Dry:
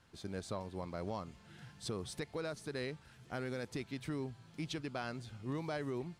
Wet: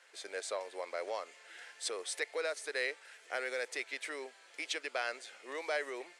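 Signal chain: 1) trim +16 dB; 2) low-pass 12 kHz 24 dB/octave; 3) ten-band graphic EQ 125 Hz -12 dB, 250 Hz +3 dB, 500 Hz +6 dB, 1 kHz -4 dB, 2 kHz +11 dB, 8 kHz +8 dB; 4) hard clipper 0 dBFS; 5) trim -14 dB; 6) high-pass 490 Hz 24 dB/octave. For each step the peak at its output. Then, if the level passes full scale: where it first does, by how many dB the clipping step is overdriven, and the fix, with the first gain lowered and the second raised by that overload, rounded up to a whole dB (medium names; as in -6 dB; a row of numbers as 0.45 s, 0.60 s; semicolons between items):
-12.5 dBFS, -12.5 dBFS, -5.0 dBFS, -5.0 dBFS, -19.0 dBFS, -21.0 dBFS; nothing clips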